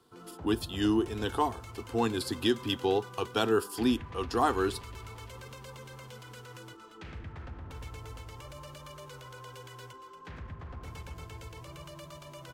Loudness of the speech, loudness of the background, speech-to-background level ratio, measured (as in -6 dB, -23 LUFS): -30.5 LUFS, -45.5 LUFS, 15.0 dB